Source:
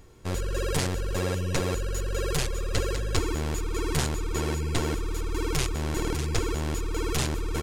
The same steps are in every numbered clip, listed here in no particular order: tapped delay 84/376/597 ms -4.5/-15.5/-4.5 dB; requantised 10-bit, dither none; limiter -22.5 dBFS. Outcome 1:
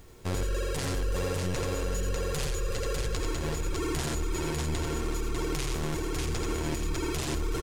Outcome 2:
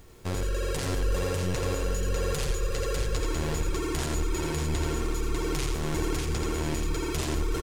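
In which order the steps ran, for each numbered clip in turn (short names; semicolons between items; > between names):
tapped delay > limiter > requantised; limiter > requantised > tapped delay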